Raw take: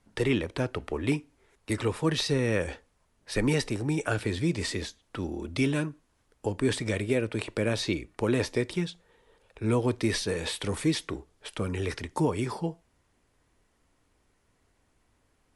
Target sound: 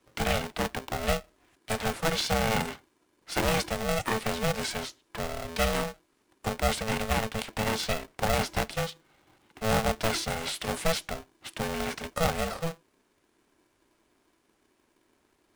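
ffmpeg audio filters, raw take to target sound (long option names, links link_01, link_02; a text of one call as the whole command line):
ffmpeg -i in.wav -filter_complex "[0:a]acrossover=split=210|440|4900[link_01][link_02][link_03][link_04];[link_02]acrusher=samples=40:mix=1:aa=0.000001:lfo=1:lforange=40:lforate=0.7[link_05];[link_01][link_05][link_03][link_04]amix=inputs=4:normalize=0,aeval=exprs='val(0)*sgn(sin(2*PI*330*n/s))':channel_layout=same" out.wav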